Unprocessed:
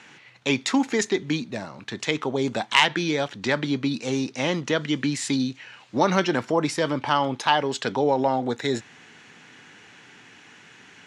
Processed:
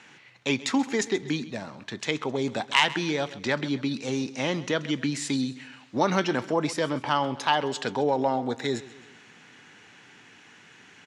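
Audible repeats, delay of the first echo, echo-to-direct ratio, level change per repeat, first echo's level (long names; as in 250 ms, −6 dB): 3, 132 ms, −16.5 dB, −6.5 dB, −17.5 dB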